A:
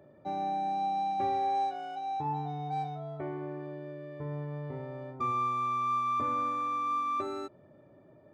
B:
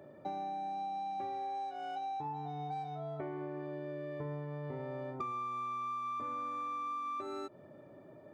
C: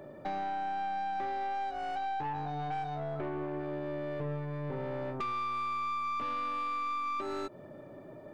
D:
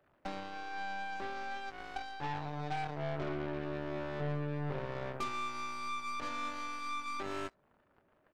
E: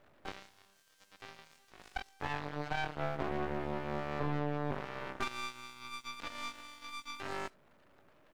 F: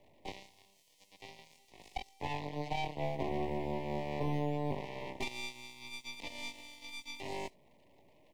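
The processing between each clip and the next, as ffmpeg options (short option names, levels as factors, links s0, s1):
-af "highpass=f=150:p=1,acompressor=threshold=0.00891:ratio=10,volume=1.58"
-af "aeval=exprs='(tanh(79.4*val(0)+0.4)-tanh(0.4))/79.4':c=same,volume=2.37"
-af "aecho=1:1:21|70:0.562|0.237,aeval=exprs='0.0631*(cos(1*acos(clip(val(0)/0.0631,-1,1)))-cos(1*PI/2))+0.00316*(cos(3*acos(clip(val(0)/0.0631,-1,1)))-cos(3*PI/2))+0.00891*(cos(7*acos(clip(val(0)/0.0631,-1,1)))-cos(7*PI/2))':c=same,volume=0.794"
-af "aeval=exprs='max(val(0),0)':c=same,volume=3.55"
-filter_complex "[0:a]asuperstop=centerf=1400:order=8:qfactor=1.5,acrossover=split=130|6500[s0][s1][s2];[s0]acrusher=samples=12:mix=1:aa=0.000001:lfo=1:lforange=12:lforate=0.33[s3];[s3][s1][s2]amix=inputs=3:normalize=0,volume=1.12"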